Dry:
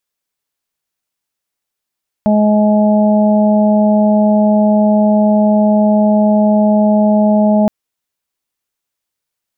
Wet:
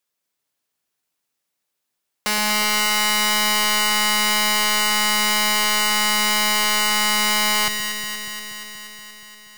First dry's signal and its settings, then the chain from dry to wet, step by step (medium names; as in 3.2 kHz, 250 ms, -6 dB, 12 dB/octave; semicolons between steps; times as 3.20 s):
steady additive tone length 5.42 s, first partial 211 Hz, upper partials -17.5/-4/-11.5 dB, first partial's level -9 dB
high-pass 100 Hz 12 dB/octave; integer overflow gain 16 dB; on a send: echo whose repeats swap between lows and highs 119 ms, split 810 Hz, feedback 85%, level -5.5 dB